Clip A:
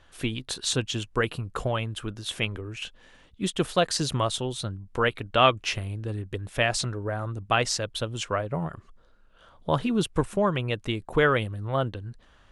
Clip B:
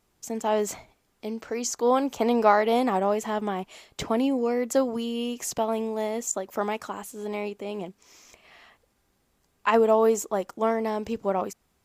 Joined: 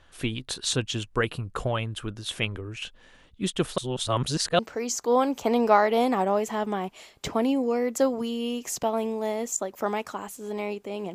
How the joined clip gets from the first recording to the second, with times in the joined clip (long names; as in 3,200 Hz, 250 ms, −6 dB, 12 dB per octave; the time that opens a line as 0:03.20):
clip A
0:03.78–0:04.59: reverse
0:04.59: continue with clip B from 0:01.34